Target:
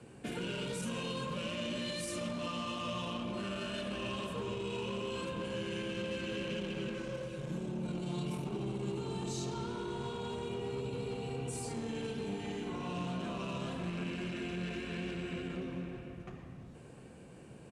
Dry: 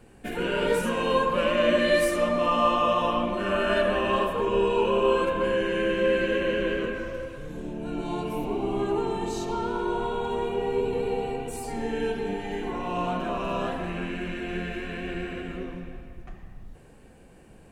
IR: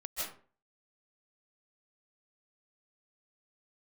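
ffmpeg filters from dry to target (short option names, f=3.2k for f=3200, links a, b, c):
-filter_complex "[0:a]asettb=1/sr,asplit=3[a][b][c];[a]atrim=end=6.504[d];[b]atrim=start=6.5:end=8.98,asetpts=PTS-STARTPTS,afade=t=in:d=0.004:c=qsin,afade=t=out:st=2.476:d=0.004:c=qsin,aecho=1:1:5.4:0.89,atrim=end_sample=109368[e];[c]atrim=start=8.976[f];[d][e]acrossfade=d=0.004:c1=hsin:c2=qsin[g];[g][f]acrossfade=d=0.004:c1=qsin:c2=hsin,acrossover=split=200|3000[h][i][j];[i]acompressor=threshold=-40dB:ratio=4[k];[h][k][j]amix=inputs=3:normalize=0,alimiter=level_in=4dB:limit=-24dB:level=0:latency=1:release=11,volume=-4dB,asoftclip=type=hard:threshold=-33dB,highpass=100,equalizer=f=130:t=q:w=4:g=6,equalizer=f=770:t=q:w=4:g=-4,equalizer=f=1.8k:t=q:w=4:g=-5,lowpass=f=9.8k:w=0.5412,lowpass=f=9.8k:w=1.3066,asplit=2[l][m];[m]adelay=699.7,volume=-13dB,highshelf=f=4k:g=-15.7[n];[l][n]amix=inputs=2:normalize=0"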